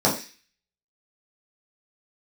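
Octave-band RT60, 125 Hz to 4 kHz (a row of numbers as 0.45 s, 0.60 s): 0.25 s, 0.35 s, 0.30 s, 0.35 s, 0.55 s, 0.55 s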